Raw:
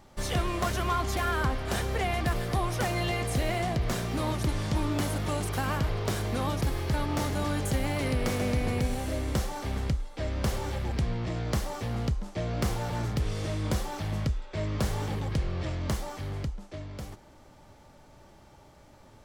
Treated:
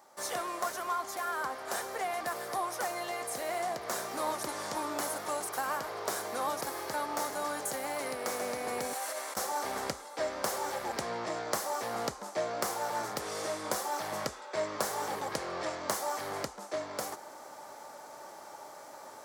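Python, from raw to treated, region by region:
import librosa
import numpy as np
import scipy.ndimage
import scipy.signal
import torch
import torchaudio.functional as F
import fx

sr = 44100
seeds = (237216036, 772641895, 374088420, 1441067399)

y = fx.chain(x, sr, fx.highpass(hz=750.0, slope=12),
    fx.over_compress(threshold_db=-40.0, ratio=-0.5), at=(8.93, 9.37))
y = scipy.signal.sosfilt(scipy.signal.butter(2, 690.0, 'highpass', fs=sr, output='sos'), y)
y = fx.rider(y, sr, range_db=10, speed_s=0.5)
y = fx.peak_eq(y, sr, hz=2900.0, db=-12.5, octaves=1.3)
y = y * 10.0 ** (4.5 / 20.0)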